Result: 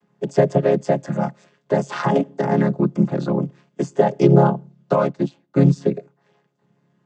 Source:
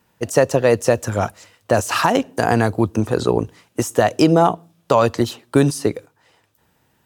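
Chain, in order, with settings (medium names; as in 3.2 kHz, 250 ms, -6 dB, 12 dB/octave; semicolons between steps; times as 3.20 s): vocoder on a held chord major triad, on C#3; 4.96–5.58 s: upward expansion 1.5:1, over -37 dBFS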